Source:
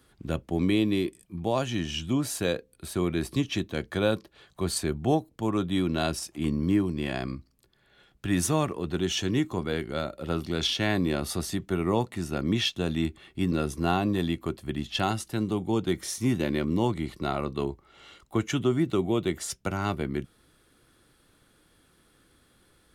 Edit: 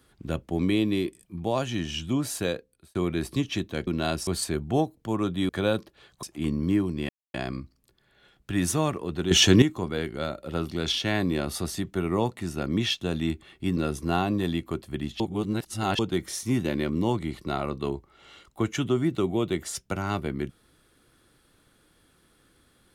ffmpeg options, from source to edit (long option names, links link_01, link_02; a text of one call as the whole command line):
ffmpeg -i in.wav -filter_complex "[0:a]asplit=11[link_01][link_02][link_03][link_04][link_05][link_06][link_07][link_08][link_09][link_10][link_11];[link_01]atrim=end=2.95,asetpts=PTS-STARTPTS,afade=type=out:start_time=2.43:duration=0.52[link_12];[link_02]atrim=start=2.95:end=3.872,asetpts=PTS-STARTPTS,afade=type=in:duration=0.004:curve=hsin[link_13];[link_03]atrim=start=5.828:end=6.232[link_14];[link_04]atrim=start=4.608:end=5.832[link_15];[link_05]atrim=start=3.868:end=4.612[link_16];[link_06]atrim=start=6.228:end=7.09,asetpts=PTS-STARTPTS,afade=type=out:start_time=0.858:duration=0.004:curve=hsin,apad=pad_dur=0.25[link_17];[link_07]atrim=start=7.09:end=9.062,asetpts=PTS-STARTPTS,afade=type=in:duration=0.004:curve=hsin[link_18];[link_08]atrim=start=9.058:end=9.372,asetpts=PTS-STARTPTS,volume=11dB[link_19];[link_09]atrim=start=9.368:end=14.952[link_20];[link_10]atrim=start=14.948:end=15.742,asetpts=PTS-STARTPTS,areverse[link_21];[link_11]atrim=start=15.738[link_22];[link_12][link_13]concat=n=2:v=0:a=1[link_23];[link_23][link_14]acrossfade=duration=0.004:curve1=hsin:curve2=hsin[link_24];[link_24][link_15]acrossfade=duration=0.004:curve1=hsin:curve2=hsin[link_25];[link_25][link_16]acrossfade=duration=0.004:curve1=hsin:curve2=hsin[link_26];[link_17][link_18]concat=n=2:v=0:a=1[link_27];[link_26][link_27]acrossfade=duration=0.004:curve1=hsin:curve2=hsin[link_28];[link_28][link_19]acrossfade=duration=0.004:curve1=hsin:curve2=hsin[link_29];[link_29][link_20]acrossfade=duration=0.004:curve1=hsin:curve2=hsin[link_30];[link_30][link_21]acrossfade=duration=0.004:curve1=hsin:curve2=hsin[link_31];[link_31][link_22]acrossfade=duration=0.004:curve1=hsin:curve2=hsin" out.wav